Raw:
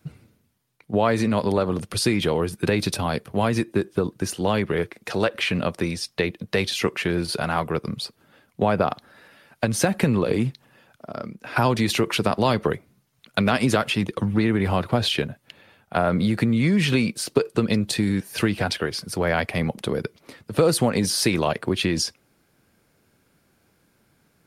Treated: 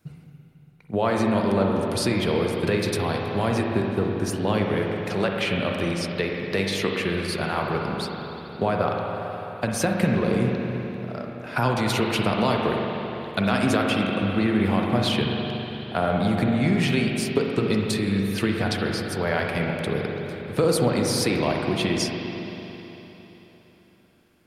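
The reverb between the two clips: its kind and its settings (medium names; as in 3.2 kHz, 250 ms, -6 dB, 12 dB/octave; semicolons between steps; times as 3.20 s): spring tank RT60 3.7 s, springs 41/56 ms, chirp 30 ms, DRR 0 dB; trim -3.5 dB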